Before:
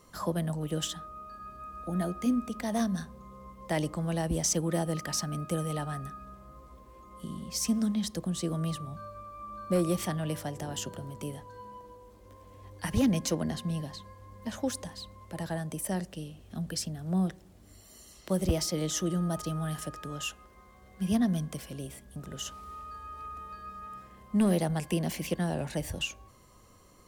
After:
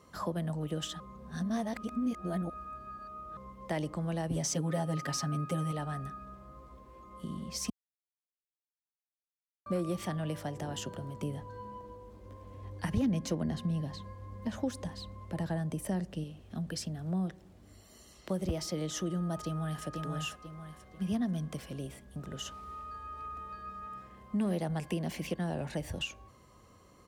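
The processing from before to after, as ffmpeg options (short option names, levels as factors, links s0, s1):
-filter_complex "[0:a]asettb=1/sr,asplit=3[s0][s1][s2];[s0]atrim=end=4.304[s3];[s1]atrim=start=4.3:end=5.72,asetpts=PTS-STARTPTS,afade=t=in:d=0.004:c=qsin,afade=t=out:st=1.416:d=0.004:c=qsin,aecho=1:1:7.3:0.98,atrim=end_sample=62622[s4];[s2]atrim=start=5.716[s5];[s3][s4]acrossfade=d=0.004:c1=hsin:c2=qsin[s6];[s6][s5]acrossfade=d=0.004:c1=qsin:c2=hsin,asettb=1/sr,asplit=3[s7][s8][s9];[s7]atrim=end=11.224[s10];[s8]atrim=start=11.22:end=16.24,asetpts=PTS-STARTPTS,afade=t=in:d=0.004:c=qsin,afade=t=out:st=5.016:d=0.004:c=qsin,lowshelf=f=330:g=6.5[s11];[s9]atrim=start=16.236[s12];[s10][s11]acrossfade=d=0.004:c1=hsin:c2=qsin[s13];[s13][s12]acrossfade=d=0.004:c1=qsin:c2=hsin,asplit=2[s14][s15];[s15]afade=t=in:st=19.44:d=0.01,afade=t=out:st=19.86:d=0.01,aecho=0:1:490|980|1470|1960:0.595662|0.208482|0.0729686|0.025539[s16];[s14][s16]amix=inputs=2:normalize=0,asplit=5[s17][s18][s19][s20][s21];[s17]atrim=end=1.002[s22];[s18]atrim=start=0.998:end=3.372,asetpts=PTS-STARTPTS,areverse[s23];[s19]atrim=start=3.368:end=7.7,asetpts=PTS-STARTPTS,afade=t=out:st=4.328:d=0.004:c=hsin[s24];[s20]atrim=start=7.7:end=9.66,asetpts=PTS-STARTPTS,volume=0[s25];[s21]atrim=start=9.66,asetpts=PTS-STARTPTS,afade=t=in:d=0.004:c=hsin[s26];[s22][s23]acrossfade=d=0.004:c1=hsin:c2=hsin[s27];[s24][s25][s26]concat=n=3:v=0:a=1[s28];[s27][s28]acrossfade=d=0.004:c1=hsin:c2=hsin,highpass=48,highshelf=f=6000:g=-9.5,acompressor=threshold=0.0224:ratio=2"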